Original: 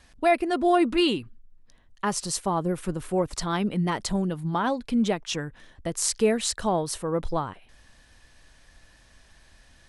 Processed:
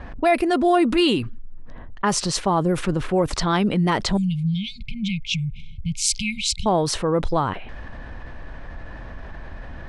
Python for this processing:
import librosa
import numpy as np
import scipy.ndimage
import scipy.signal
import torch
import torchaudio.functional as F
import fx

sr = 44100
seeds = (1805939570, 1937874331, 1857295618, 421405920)

y = fx.brickwall_bandstop(x, sr, low_hz=200.0, high_hz=2100.0, at=(4.17, 6.66))
y = fx.env_lowpass(y, sr, base_hz=1200.0, full_db=-20.0)
y = fx.env_flatten(y, sr, amount_pct=50)
y = F.gain(torch.from_numpy(y), 2.0).numpy()